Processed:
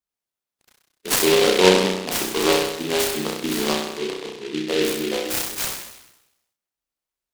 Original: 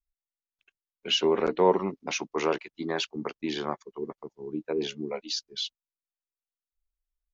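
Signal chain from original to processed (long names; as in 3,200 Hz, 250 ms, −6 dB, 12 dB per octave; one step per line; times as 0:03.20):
high-pass filter 130 Hz 12 dB per octave
flutter between parallel walls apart 5.5 metres, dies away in 0.92 s
short delay modulated by noise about 2,800 Hz, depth 0.15 ms
level +4.5 dB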